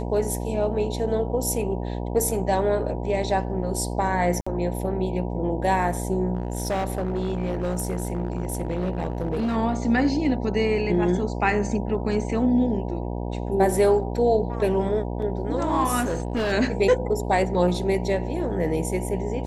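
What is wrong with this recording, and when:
mains buzz 60 Hz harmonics 16 −29 dBFS
0:04.41–0:04.46: drop-out 55 ms
0:06.35–0:09.57: clipping −21 dBFS
0:16.00–0:16.53: clipping −20.5 dBFS

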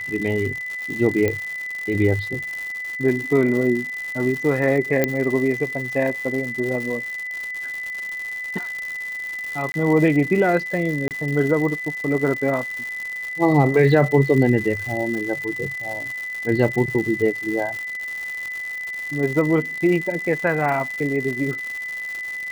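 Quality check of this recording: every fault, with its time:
surface crackle 220 per second −27 dBFS
whistle 2,000 Hz −27 dBFS
0:01.28: click −9 dBFS
0:05.04: click −5 dBFS
0:09.72–0:09.74: drop-out 21 ms
0:11.08–0:11.11: drop-out 28 ms

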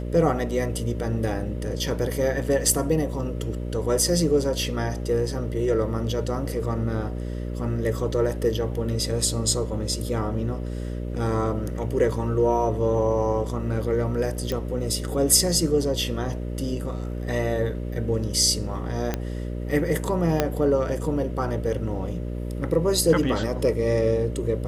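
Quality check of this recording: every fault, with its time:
mains buzz 60 Hz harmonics 10 −30 dBFS
0:14.52: click −15 dBFS
0:19.14: click −11 dBFS
0:20.40: click −6 dBFS

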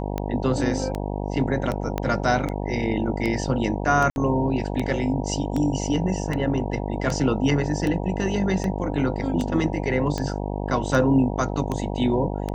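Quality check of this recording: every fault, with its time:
mains buzz 50 Hz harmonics 19 −28 dBFS
scratch tick 78 rpm −14 dBFS
0:01.98: click −12 dBFS
0:04.10–0:04.16: drop-out 61 ms

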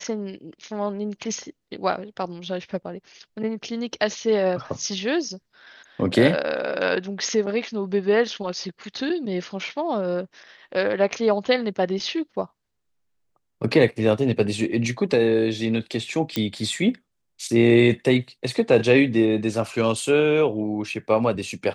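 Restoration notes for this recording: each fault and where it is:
0:16.36: click −10 dBFS

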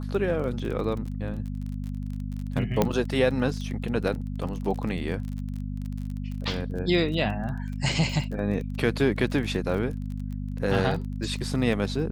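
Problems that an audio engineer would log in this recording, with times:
surface crackle 28 per second −33 dBFS
mains hum 50 Hz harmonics 5 −32 dBFS
0:02.82: click −8 dBFS

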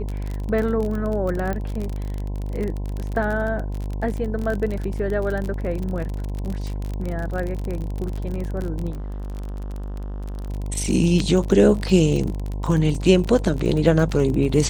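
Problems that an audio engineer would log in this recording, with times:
mains buzz 50 Hz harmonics 21 −27 dBFS
surface crackle 35 per second −25 dBFS
0:01.53: click −15 dBFS
0:08.90–0:10.50: clipping −28 dBFS

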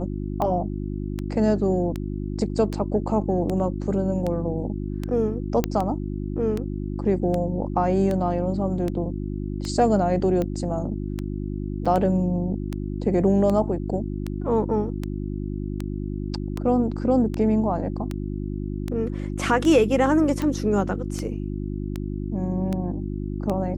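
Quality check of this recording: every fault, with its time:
mains hum 50 Hz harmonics 7 −29 dBFS
scratch tick 78 rpm −15 dBFS
0:05.64: click −8 dBFS
0:11.85–0:11.86: drop-out 5.8 ms

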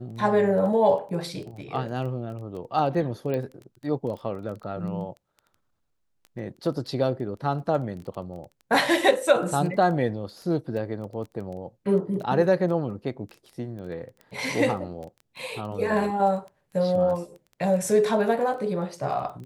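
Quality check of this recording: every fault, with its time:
surface crackle 11 per second −34 dBFS
0:03.34: click −18 dBFS

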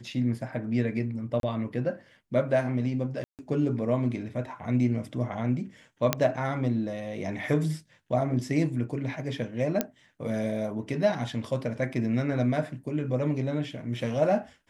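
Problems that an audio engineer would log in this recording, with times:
0:01.40–0:01.43: drop-out 32 ms
0:03.24–0:03.39: drop-out 148 ms
0:06.13: click −6 dBFS
0:09.81: click −10 dBFS

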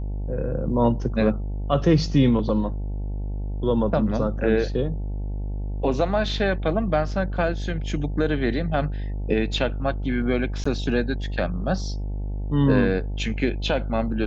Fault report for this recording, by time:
mains buzz 50 Hz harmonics 18 −28 dBFS
0:10.64–0:10.65: drop-out 15 ms

